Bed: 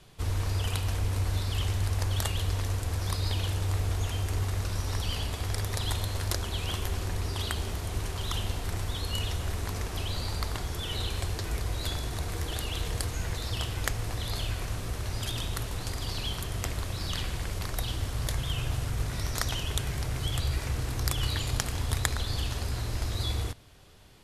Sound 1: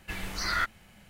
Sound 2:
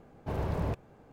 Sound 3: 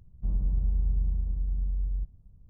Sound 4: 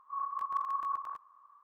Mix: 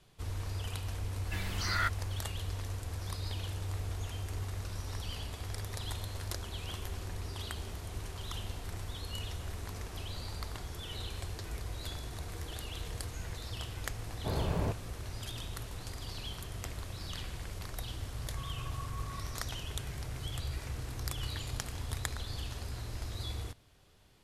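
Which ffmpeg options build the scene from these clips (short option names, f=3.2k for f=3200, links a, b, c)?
-filter_complex "[0:a]volume=-8.5dB[a];[4:a]highpass=f=1.3k:w=0.5412,highpass=f=1.3k:w=1.3066[b];[1:a]atrim=end=1.09,asetpts=PTS-STARTPTS,volume=-3.5dB,afade=t=in:d=0.004:c=hsin,afade=t=out:st=1.086:d=0.004:c=hsin,adelay=1230[c];[2:a]atrim=end=1.12,asetpts=PTS-STARTPTS,volume=-1dB,afade=t=in:d=0.004:c=hsin,afade=t=out:st=1.116:d=0.004:c=hsin,adelay=13980[d];[b]atrim=end=1.63,asetpts=PTS-STARTPTS,volume=-7.5dB,afade=t=in:d=0.004:c=hsin,afade=t=out:st=1.626:d=0.004:c=hsin,adelay=18240[e];[a][c][d][e]amix=inputs=4:normalize=0"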